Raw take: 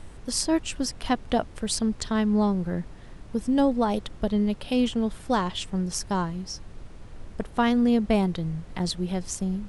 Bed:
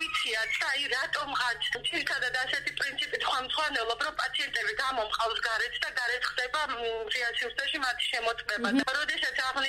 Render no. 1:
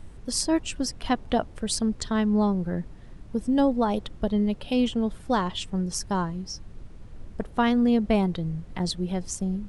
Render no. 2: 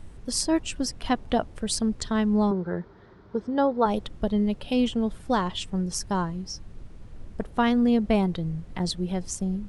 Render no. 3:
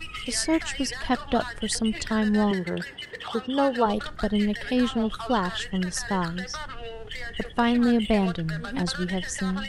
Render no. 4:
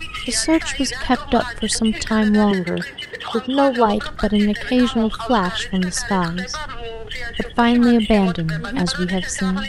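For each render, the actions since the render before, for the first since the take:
denoiser 6 dB, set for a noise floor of -44 dBFS
2.51–3.86 speaker cabinet 100–4700 Hz, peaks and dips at 140 Hz -9 dB, 260 Hz -7 dB, 400 Hz +9 dB, 960 Hz +6 dB, 1400 Hz +8 dB, 2700 Hz -10 dB
add bed -6.5 dB
gain +7 dB; limiter -2 dBFS, peak gain reduction 1.5 dB

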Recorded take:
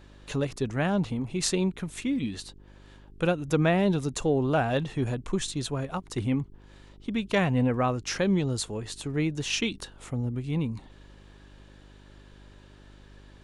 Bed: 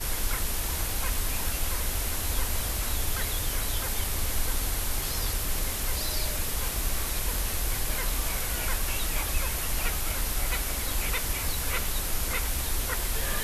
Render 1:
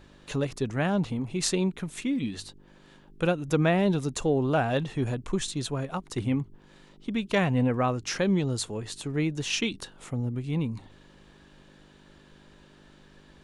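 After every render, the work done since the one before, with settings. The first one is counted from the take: de-hum 50 Hz, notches 2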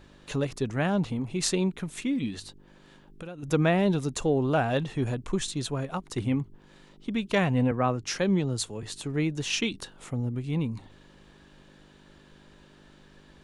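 2.39–3.43 compressor, threshold -37 dBFS; 7.71–8.83 three-band expander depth 40%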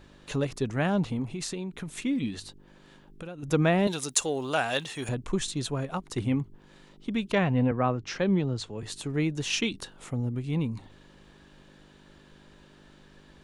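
1.29–1.98 compressor 10:1, threshold -30 dBFS; 3.87–5.09 tilt +4 dB/oct; 7.32–8.78 air absorption 130 m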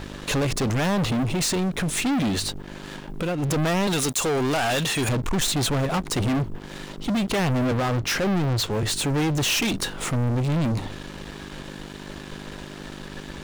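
limiter -20 dBFS, peak gain reduction 10 dB; sample leveller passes 5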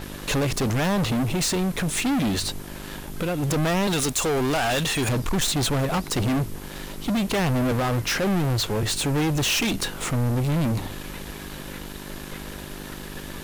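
add bed -13 dB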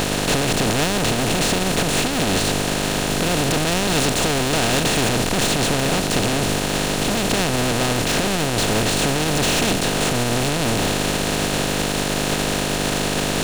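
per-bin compression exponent 0.2; limiter -11 dBFS, peak gain reduction 10 dB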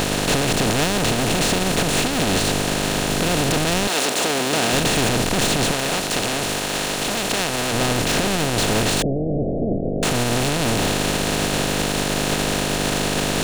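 3.87–4.72 HPF 470 Hz -> 140 Hz; 5.71–7.73 low shelf 330 Hz -9 dB; 9.02–10.03 steep low-pass 680 Hz 72 dB/oct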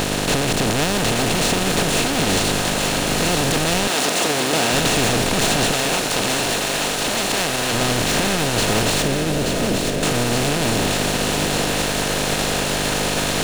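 thinning echo 0.879 s, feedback 66%, high-pass 370 Hz, level -5 dB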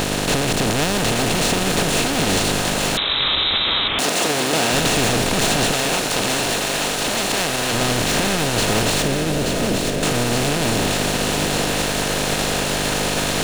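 2.97–3.99 inverted band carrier 3900 Hz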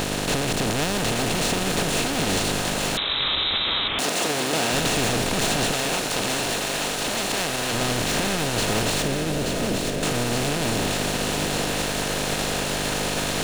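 gain -4.5 dB

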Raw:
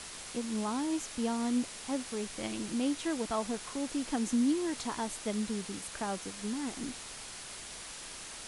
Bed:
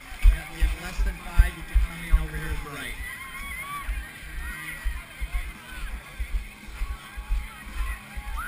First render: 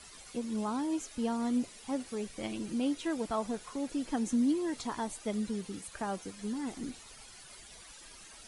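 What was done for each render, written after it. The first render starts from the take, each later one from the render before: denoiser 12 dB, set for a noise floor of -45 dBFS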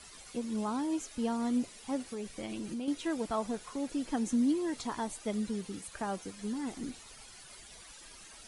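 2.02–2.88 compressor, threshold -34 dBFS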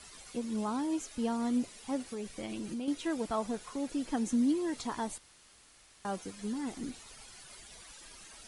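5.18–6.05 room tone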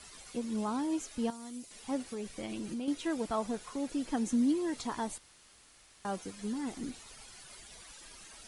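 1.3–1.71 pre-emphasis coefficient 0.8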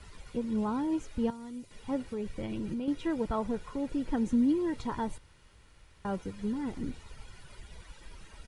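tone controls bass +12 dB, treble -12 dB; comb 2.1 ms, depth 36%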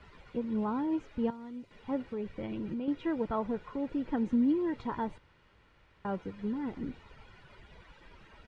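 LPF 2800 Hz 12 dB/oct; low shelf 79 Hz -11.5 dB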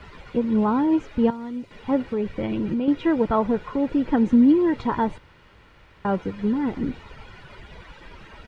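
gain +11.5 dB

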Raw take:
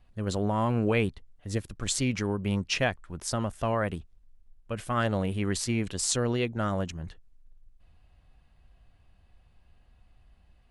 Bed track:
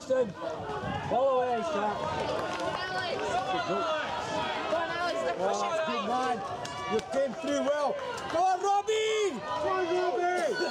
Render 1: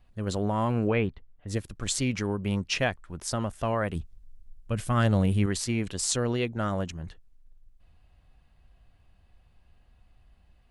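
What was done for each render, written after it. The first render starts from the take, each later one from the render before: 0.87–1.48 LPF 2700 Hz; 3.95–5.46 tone controls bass +8 dB, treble +5 dB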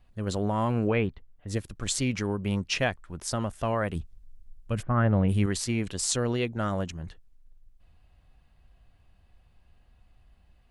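4.81–5.28 LPF 1500 Hz -> 2800 Hz 24 dB/oct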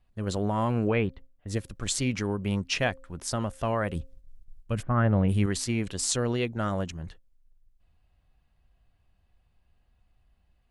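de-hum 265.6 Hz, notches 2; gate -46 dBFS, range -7 dB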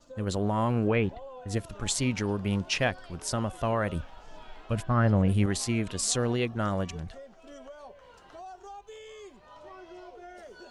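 add bed track -18.5 dB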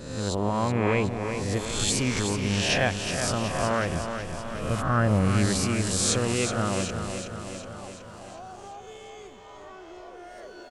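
spectral swells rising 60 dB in 0.96 s; on a send: feedback echo 0.371 s, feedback 60%, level -7.5 dB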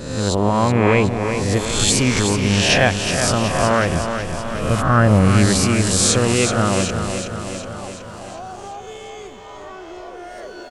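gain +9 dB; limiter -1 dBFS, peak gain reduction 2.5 dB

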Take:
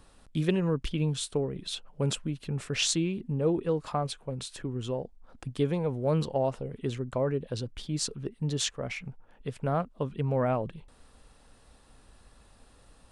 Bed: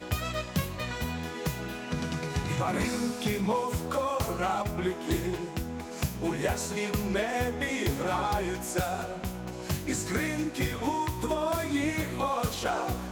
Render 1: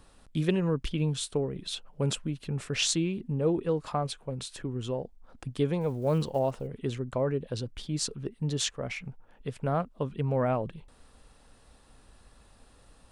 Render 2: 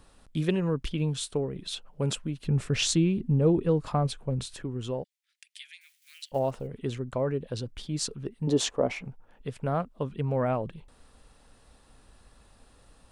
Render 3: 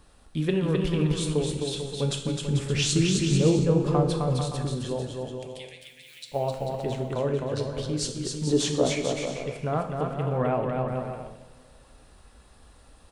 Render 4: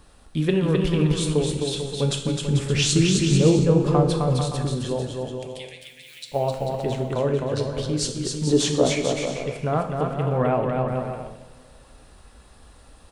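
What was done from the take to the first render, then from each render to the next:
5.81–6.68 block floating point 7-bit
2.44–4.54 low shelf 270 Hz +9.5 dB; 5.04–6.32 steep high-pass 1900 Hz 48 dB/oct; 8.47–9.07 band shelf 500 Hz +11 dB 2.5 oct
bouncing-ball echo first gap 0.26 s, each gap 0.7×, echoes 5; two-slope reverb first 0.76 s, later 3.3 s, from -20 dB, DRR 5.5 dB
gain +4 dB

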